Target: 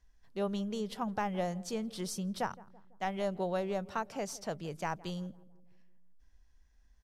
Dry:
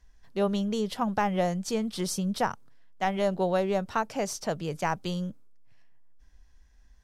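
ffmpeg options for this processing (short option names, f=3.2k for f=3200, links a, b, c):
-filter_complex "[0:a]asplit=2[a][b];[b]adelay=166,lowpass=f=1.1k:p=1,volume=-19dB,asplit=2[c][d];[d]adelay=166,lowpass=f=1.1k:p=1,volume=0.55,asplit=2[e][f];[f]adelay=166,lowpass=f=1.1k:p=1,volume=0.55,asplit=2[g][h];[h]adelay=166,lowpass=f=1.1k:p=1,volume=0.55,asplit=2[i][j];[j]adelay=166,lowpass=f=1.1k:p=1,volume=0.55[k];[a][c][e][g][i][k]amix=inputs=6:normalize=0,volume=-7.5dB"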